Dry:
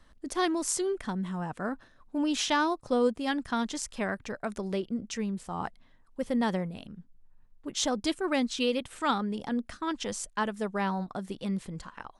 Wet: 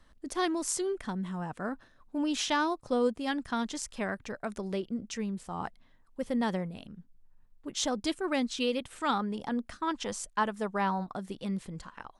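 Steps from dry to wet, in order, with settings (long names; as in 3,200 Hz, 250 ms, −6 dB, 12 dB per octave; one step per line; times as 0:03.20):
0:09.13–0:11.16: dynamic equaliser 1,000 Hz, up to +5 dB, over −45 dBFS, Q 1.2
level −2 dB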